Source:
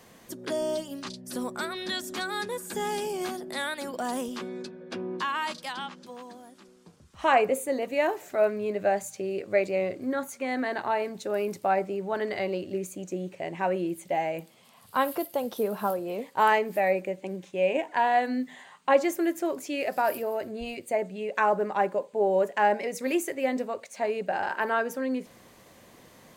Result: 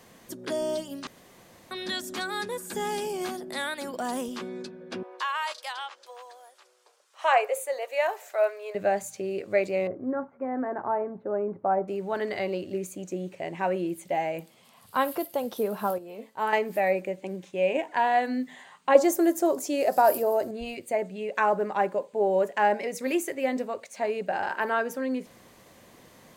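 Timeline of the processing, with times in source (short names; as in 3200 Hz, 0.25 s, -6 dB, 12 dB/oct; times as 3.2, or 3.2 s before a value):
1.07–1.71 room tone
5.03–8.75 steep high-pass 490 Hz
9.87–11.88 LPF 1300 Hz 24 dB/oct
15.98–16.53 resonator 220 Hz, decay 0.25 s, mix 70%
18.95–20.51 EQ curve 120 Hz 0 dB, 740 Hz +7 dB, 2400 Hz -5 dB, 6100 Hz +7 dB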